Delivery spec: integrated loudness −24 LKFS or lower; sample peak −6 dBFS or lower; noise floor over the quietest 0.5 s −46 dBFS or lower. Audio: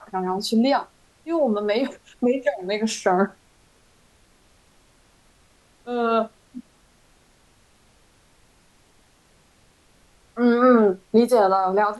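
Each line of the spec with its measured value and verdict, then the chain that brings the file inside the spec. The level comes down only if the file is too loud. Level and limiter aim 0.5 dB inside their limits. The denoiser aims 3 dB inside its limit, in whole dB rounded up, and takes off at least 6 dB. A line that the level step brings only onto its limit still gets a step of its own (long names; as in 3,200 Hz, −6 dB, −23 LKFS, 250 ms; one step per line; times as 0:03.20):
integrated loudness −21.0 LKFS: out of spec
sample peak −5.5 dBFS: out of spec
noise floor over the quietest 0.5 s −58 dBFS: in spec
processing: level −3.5 dB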